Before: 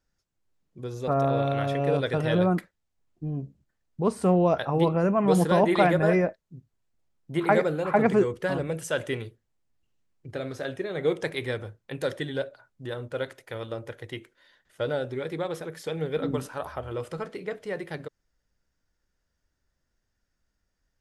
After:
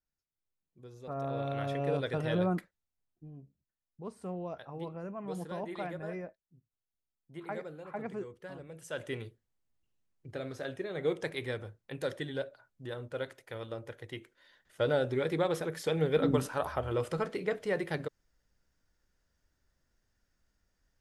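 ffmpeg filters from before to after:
-af "volume=3.98,afade=t=in:st=1.06:d=0.64:silence=0.375837,afade=t=out:st=2.58:d=0.72:silence=0.281838,afade=t=in:st=8.72:d=0.52:silence=0.251189,afade=t=in:st=14.1:d=1.06:silence=0.446684"

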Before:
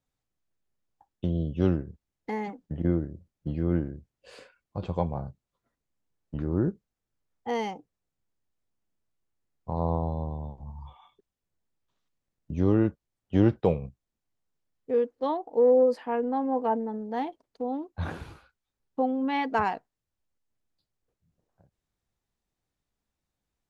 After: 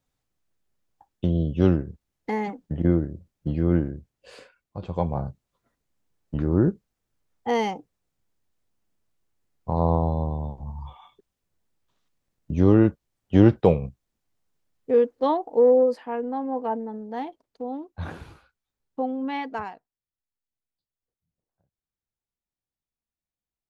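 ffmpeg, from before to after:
-af "volume=4.47,afade=t=out:st=3.9:d=0.96:silence=0.446684,afade=t=in:st=4.86:d=0.34:silence=0.398107,afade=t=out:st=15.34:d=0.68:silence=0.446684,afade=t=out:st=19.3:d=0.46:silence=0.281838"

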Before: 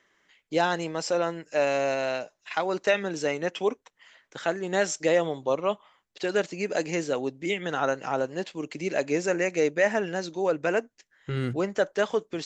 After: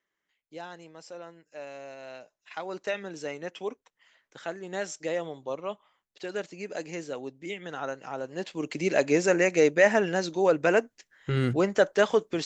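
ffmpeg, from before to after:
-af "volume=1.41,afade=t=in:st=1.96:d=0.78:silence=0.354813,afade=t=in:st=8.21:d=0.53:silence=0.281838"

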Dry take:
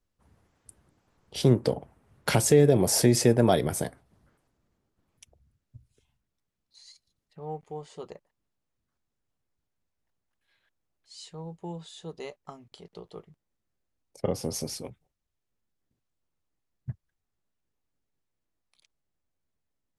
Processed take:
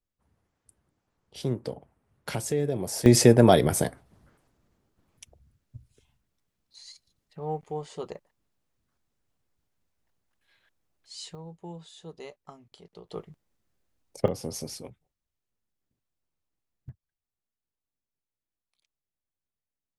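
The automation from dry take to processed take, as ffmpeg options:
-af "asetnsamples=n=441:p=0,asendcmd='3.06 volume volume 4.5dB;11.35 volume volume -3.5dB;13.1 volume volume 6dB;14.28 volume volume -3dB;16.89 volume volume -10.5dB',volume=0.376"

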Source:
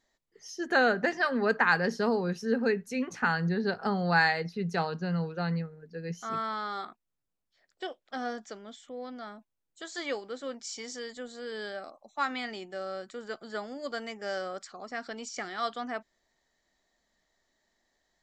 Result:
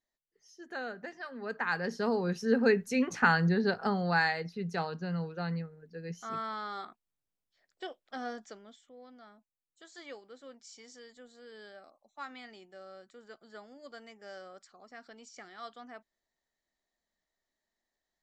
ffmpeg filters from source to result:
-af "volume=1.41,afade=t=in:st=1.36:d=0.56:silence=0.316228,afade=t=in:st=1.92:d=0.88:silence=0.398107,afade=t=out:st=3.3:d=0.91:silence=0.446684,afade=t=out:st=8.44:d=0.43:silence=0.375837"

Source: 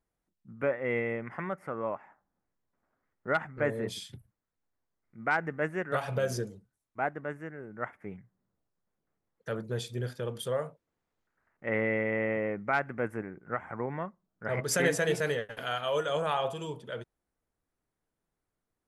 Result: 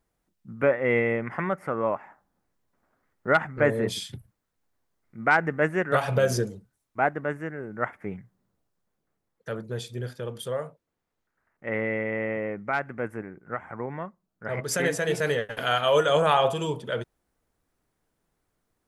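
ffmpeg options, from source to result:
-af "volume=5.96,afade=t=out:st=8.12:d=1.5:silence=0.473151,afade=t=in:st=15.03:d=0.73:silence=0.398107"

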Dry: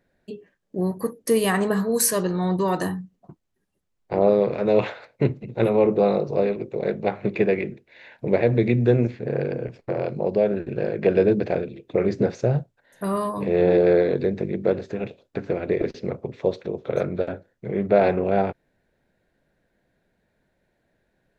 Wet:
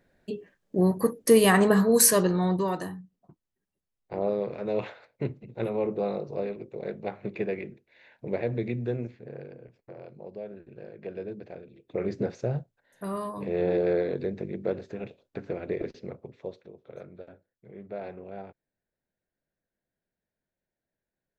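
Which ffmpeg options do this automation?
-af "volume=4.47,afade=t=out:st=2.09:d=0.77:silence=0.251189,afade=t=out:st=8.52:d=1.05:silence=0.354813,afade=t=in:st=11.63:d=0.42:silence=0.281838,afade=t=out:st=15.72:d=1.02:silence=0.251189"

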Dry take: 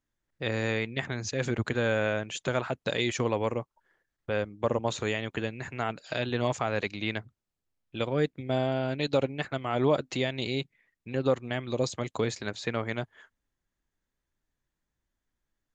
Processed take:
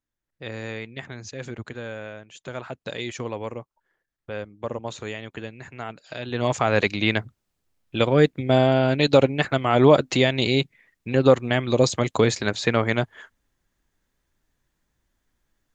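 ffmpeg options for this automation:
-af "volume=7.08,afade=t=out:st=1.21:d=1.08:silence=0.446684,afade=t=in:st=2.29:d=0.41:silence=0.398107,afade=t=in:st=6.22:d=0.56:silence=0.223872"

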